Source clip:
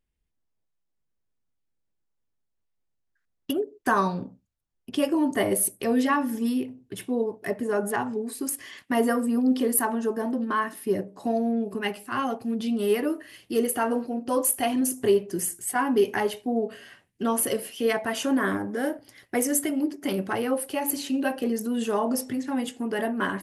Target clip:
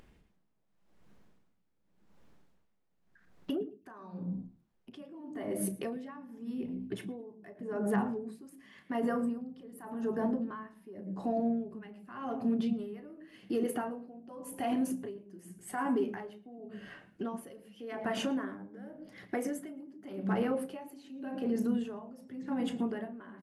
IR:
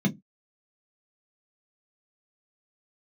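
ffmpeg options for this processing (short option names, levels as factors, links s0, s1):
-filter_complex "[0:a]lowpass=f=1400:p=1,lowshelf=f=120:g=-10,asplit=2[s0][s1];[s1]acompressor=threshold=0.0178:ratio=6,volume=1[s2];[s0][s2]amix=inputs=2:normalize=0,alimiter=limit=0.075:level=0:latency=1:release=80,acompressor=mode=upward:threshold=0.01:ratio=2.5,asplit=2[s3][s4];[s4]adelay=34,volume=0.211[s5];[s3][s5]amix=inputs=2:normalize=0,asplit=4[s6][s7][s8][s9];[s7]adelay=109,afreqshift=-62,volume=0.0708[s10];[s8]adelay=218,afreqshift=-124,volume=0.0305[s11];[s9]adelay=327,afreqshift=-186,volume=0.013[s12];[s6][s10][s11][s12]amix=inputs=4:normalize=0,asplit=2[s13][s14];[1:a]atrim=start_sample=2205,adelay=114[s15];[s14][s15]afir=irnorm=-1:irlink=0,volume=0.0562[s16];[s13][s16]amix=inputs=2:normalize=0,aeval=exprs='val(0)*pow(10,-19*(0.5-0.5*cos(2*PI*0.88*n/s))/20)':c=same,volume=0.841"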